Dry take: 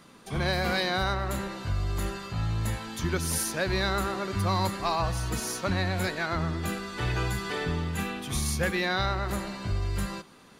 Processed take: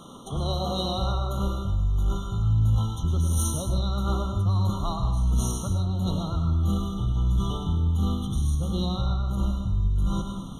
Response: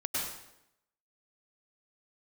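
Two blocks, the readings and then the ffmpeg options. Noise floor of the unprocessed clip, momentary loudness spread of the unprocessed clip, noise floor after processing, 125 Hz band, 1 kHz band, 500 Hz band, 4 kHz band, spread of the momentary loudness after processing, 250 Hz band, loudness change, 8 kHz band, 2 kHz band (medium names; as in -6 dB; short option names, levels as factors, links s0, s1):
-53 dBFS, 6 LU, -35 dBFS, +7.0 dB, -3.5 dB, -3.5 dB, -2.5 dB, 4 LU, +3.5 dB, +3.0 dB, -2.0 dB, under -25 dB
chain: -filter_complex "[0:a]lowpass=12000,asubboost=boost=7.5:cutoff=150,areverse,acompressor=threshold=0.0251:ratio=5,areverse,asoftclip=type=tanh:threshold=0.0501,asplit=2[s0][s1];[1:a]atrim=start_sample=2205,afade=t=out:st=0.34:d=0.01,atrim=end_sample=15435[s2];[s1][s2]afir=irnorm=-1:irlink=0,volume=0.501[s3];[s0][s3]amix=inputs=2:normalize=0,afftfilt=real='re*eq(mod(floor(b*sr/1024/1400),2),0)':imag='im*eq(mod(floor(b*sr/1024/1400),2),0)':win_size=1024:overlap=0.75,volume=2"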